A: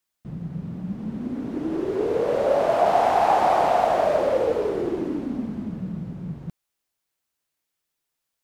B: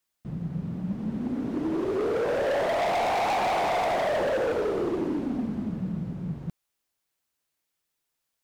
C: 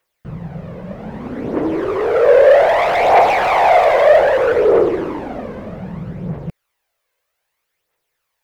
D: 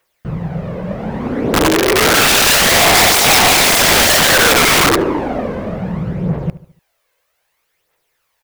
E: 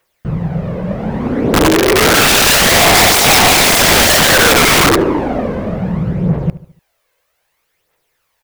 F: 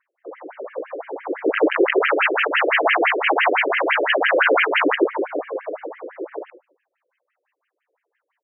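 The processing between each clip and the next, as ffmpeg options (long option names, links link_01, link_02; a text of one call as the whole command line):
ffmpeg -i in.wav -af "volume=23.5dB,asoftclip=hard,volume=-23.5dB" out.wav
ffmpeg -i in.wav -af "equalizer=frequency=250:width_type=o:width=1:gain=-7,equalizer=frequency=500:width_type=o:width=1:gain=11,equalizer=frequency=1000:width_type=o:width=1:gain=4,equalizer=frequency=2000:width_type=o:width=1:gain=7,equalizer=frequency=8000:width_type=o:width=1:gain=-3,aphaser=in_gain=1:out_gain=1:delay=2:decay=0.48:speed=0.63:type=triangular,volume=4.5dB" out.wav
ffmpeg -i in.wav -filter_complex "[0:a]aeval=exprs='(mod(4.47*val(0)+1,2)-1)/4.47':channel_layout=same,asplit=2[link_01][link_02];[link_02]adelay=73,lowpass=frequency=2100:poles=1,volume=-16dB,asplit=2[link_03][link_04];[link_04]adelay=73,lowpass=frequency=2100:poles=1,volume=0.46,asplit=2[link_05][link_06];[link_06]adelay=73,lowpass=frequency=2100:poles=1,volume=0.46,asplit=2[link_07][link_08];[link_08]adelay=73,lowpass=frequency=2100:poles=1,volume=0.46[link_09];[link_01][link_03][link_05][link_07][link_09]amix=inputs=5:normalize=0,volume=7dB" out.wav
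ffmpeg -i in.wav -af "lowshelf=frequency=370:gain=3.5,volume=1dB" out.wav
ffmpeg -i in.wav -af "bass=frequency=250:gain=9,treble=frequency=4000:gain=-5,afftfilt=real='re*between(b*sr/1024,390*pow(2300/390,0.5+0.5*sin(2*PI*5.9*pts/sr))/1.41,390*pow(2300/390,0.5+0.5*sin(2*PI*5.9*pts/sr))*1.41)':imag='im*between(b*sr/1024,390*pow(2300/390,0.5+0.5*sin(2*PI*5.9*pts/sr))/1.41,390*pow(2300/390,0.5+0.5*sin(2*PI*5.9*pts/sr))*1.41)':win_size=1024:overlap=0.75,volume=-1dB" out.wav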